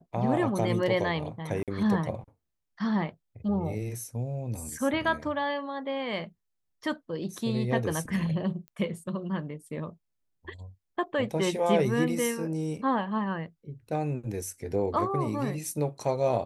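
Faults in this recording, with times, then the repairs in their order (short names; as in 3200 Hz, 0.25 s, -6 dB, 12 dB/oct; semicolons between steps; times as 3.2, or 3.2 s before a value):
1.63–1.68 gap 47 ms
8.68 pop -31 dBFS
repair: de-click; interpolate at 1.63, 47 ms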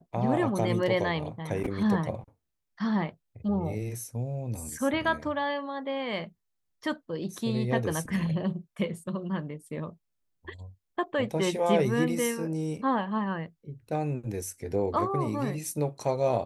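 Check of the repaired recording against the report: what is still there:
none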